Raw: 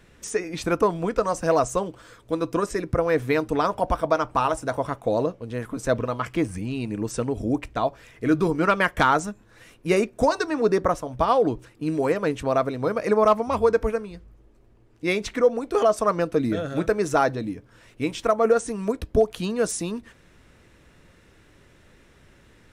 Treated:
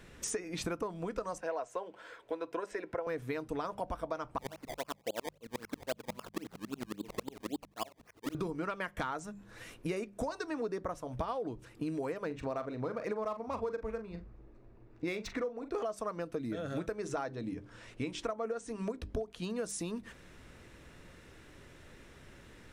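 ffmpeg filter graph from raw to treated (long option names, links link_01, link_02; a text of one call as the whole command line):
ffmpeg -i in.wav -filter_complex "[0:a]asettb=1/sr,asplit=3[link_01][link_02][link_03];[link_01]atrim=end=1.384[link_04];[link_02]atrim=start=1.38:end=3.07,asetpts=PTS-STARTPTS,afade=type=in:duration=0.004:curve=qsin,afade=type=out:start_time=1.686:duration=0.004:curve=qsin,asuperstop=centerf=1200:order=4:qfactor=7.9,acrossover=split=370 3400:gain=0.0708 1 0.2[link_05][link_06][link_07];[link_05][link_06][link_07]amix=inputs=3:normalize=0[link_08];[link_03]atrim=start=3.066[link_09];[link_04][link_08]acrossfade=duration=0.004:curve1=hsin:curve2=qsin[link_10];[link_10][link_09]acrossfade=duration=0.004:curve1=qsin:curve2=hsin,asettb=1/sr,asplit=3[link_11][link_12][link_13];[link_11]atrim=end=4.384[link_14];[link_12]atrim=start=4.38:end=8.35,asetpts=PTS-STARTPTS,afade=type=in:duration=0.004:curve=qsin,afade=type=out:start_time=3.966:duration=0.004:curve=qsin,highpass=240,acrusher=samples=22:mix=1:aa=0.000001:lfo=1:lforange=22:lforate=3.7,aeval=exprs='val(0)*pow(10,-36*if(lt(mod(-11*n/s,1),2*abs(-11)/1000),1-mod(-11*n/s,1)/(2*abs(-11)/1000),(mod(-11*n/s,1)-2*abs(-11)/1000)/(1-2*abs(-11)/1000))/20)':channel_layout=same[link_15];[link_13]atrim=start=8.346[link_16];[link_14][link_15]acrossfade=duration=0.004:curve1=hsin:curve2=qsin[link_17];[link_17][link_16]acrossfade=duration=0.004:curve1=qsin:curve2=hsin,asettb=1/sr,asplit=3[link_18][link_19][link_20];[link_18]atrim=end=12.264[link_21];[link_19]atrim=start=12.26:end=15.83,asetpts=PTS-STARTPTS,afade=type=in:duration=0.004:curve=qsin,afade=type=out:start_time=3.566:duration=0.004:curve=qsin,bandreject=frequency=3100:width=7.1,asplit=2[link_22][link_23];[link_23]adelay=41,volume=-10.5dB[link_24];[link_22][link_24]amix=inputs=2:normalize=0,atrim=end_sample=157437,adynamicsmooth=sensitivity=5.5:basefreq=3600[link_25];[link_20]atrim=start=15.826[link_26];[link_21][link_25]acrossfade=duration=0.004:curve1=hsin:curve2=qsin[link_27];[link_27][link_26]acrossfade=duration=0.004:curve1=qsin:curve2=hsin,asettb=1/sr,asplit=3[link_28][link_29][link_30];[link_28]atrim=end=16.964[link_31];[link_29]atrim=start=16.96:end=19.42,asetpts=PTS-STARTPTS,afade=type=in:duration=0.004:curve=qsin,afade=type=out:start_time=2.456:duration=0.004:curve=qsin,lowpass=8600,bandreject=frequency=50:width_type=h:width=6,bandreject=frequency=100:width_type=h:width=6,bandreject=frequency=150:width_type=h:width=6,bandreject=frequency=200:width_type=h:width=6,bandreject=frequency=250:width_type=h:width=6,bandreject=frequency=300:width_type=h:width=6,bandreject=frequency=350:width_type=h:width=6,bandreject=frequency=400:width_type=h:width=6[link_32];[link_30]atrim=start=19.416[link_33];[link_31][link_32]acrossfade=duration=0.004:curve1=hsin:curve2=qsin[link_34];[link_34][link_33]acrossfade=duration=0.004:curve1=qsin:curve2=hsin,bandreject=frequency=50:width_type=h:width=6,bandreject=frequency=100:width_type=h:width=6,bandreject=frequency=150:width_type=h:width=6,bandreject=frequency=200:width_type=h:width=6,acompressor=threshold=-34dB:ratio=8" out.wav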